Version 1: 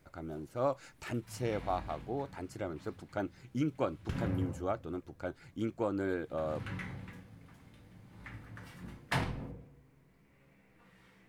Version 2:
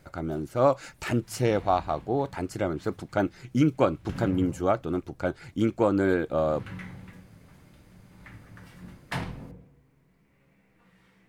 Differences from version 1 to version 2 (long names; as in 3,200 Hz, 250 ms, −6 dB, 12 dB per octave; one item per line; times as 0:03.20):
speech +10.5 dB
master: add parametric band 180 Hz +4.5 dB 0.21 octaves